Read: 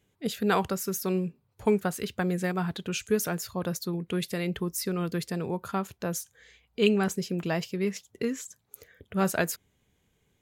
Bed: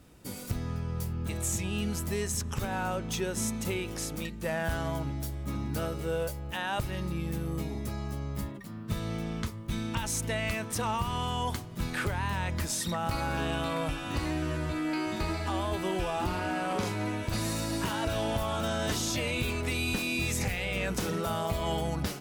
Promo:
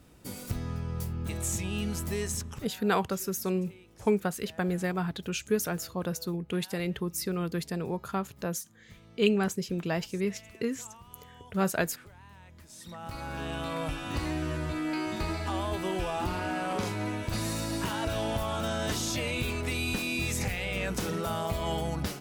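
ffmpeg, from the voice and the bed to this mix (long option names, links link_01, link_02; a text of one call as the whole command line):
ffmpeg -i stem1.wav -i stem2.wav -filter_complex "[0:a]adelay=2400,volume=-1.5dB[link_01];[1:a]volume=20dB,afade=type=out:start_time=2.31:duration=0.38:silence=0.0944061,afade=type=in:start_time=12.67:duration=1.34:silence=0.0944061[link_02];[link_01][link_02]amix=inputs=2:normalize=0" out.wav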